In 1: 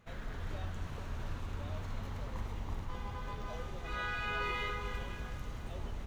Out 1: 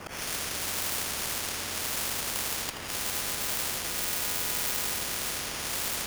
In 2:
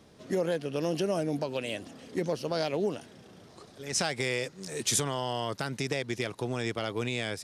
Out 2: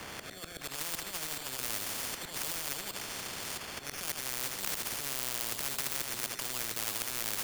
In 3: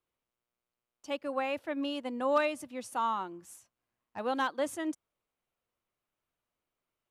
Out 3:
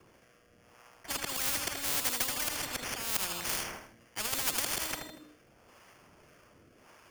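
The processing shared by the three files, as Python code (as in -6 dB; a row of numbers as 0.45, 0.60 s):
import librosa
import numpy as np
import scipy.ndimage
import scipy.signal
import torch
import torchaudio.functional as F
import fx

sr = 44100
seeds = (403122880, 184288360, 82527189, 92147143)

p1 = scipy.signal.sosfilt(scipy.signal.butter(2, 68.0, 'highpass', fs=sr, output='sos'), x)
p2 = fx.high_shelf(p1, sr, hz=6100.0, db=-3.5)
p3 = fx.hum_notches(p2, sr, base_hz=60, count=7)
p4 = fx.over_compress(p3, sr, threshold_db=-34.0, ratio=-0.5)
p5 = fx.auto_swell(p4, sr, attack_ms=259.0)
p6 = fx.sample_hold(p5, sr, seeds[0], rate_hz=3900.0, jitter_pct=0)
p7 = fx.harmonic_tremolo(p6, sr, hz=1.8, depth_pct=50, crossover_hz=440.0)
p8 = fx.rotary(p7, sr, hz=0.8)
p9 = p8 + fx.echo_feedback(p8, sr, ms=79, feedback_pct=42, wet_db=-12.5, dry=0)
p10 = fx.spectral_comp(p9, sr, ratio=10.0)
y = librosa.util.normalize(p10) * 10.0 ** (-9 / 20.0)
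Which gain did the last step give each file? +17.0, +13.0, +15.0 dB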